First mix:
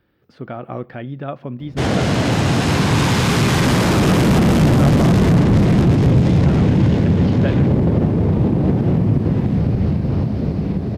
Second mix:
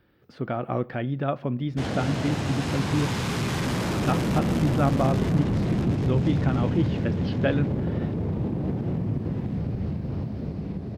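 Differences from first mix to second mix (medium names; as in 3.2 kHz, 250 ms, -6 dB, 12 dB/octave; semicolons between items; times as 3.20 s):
background -11.5 dB; reverb: on, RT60 0.55 s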